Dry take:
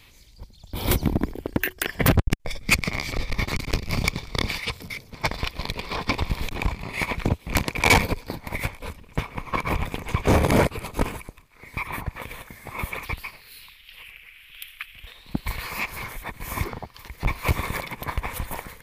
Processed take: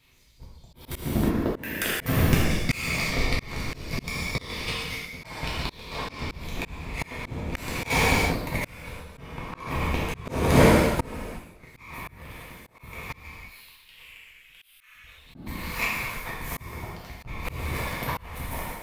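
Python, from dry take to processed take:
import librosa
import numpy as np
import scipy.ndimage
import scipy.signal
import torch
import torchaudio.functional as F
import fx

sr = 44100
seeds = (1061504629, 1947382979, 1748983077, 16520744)

y = fx.power_curve(x, sr, exponent=1.4)
y = fx.rev_gated(y, sr, seeds[0], gate_ms=380, shape='falling', drr_db=-5.5)
y = fx.auto_swell(y, sr, attack_ms=525.0)
y = y * 10.0 ** (2.5 / 20.0)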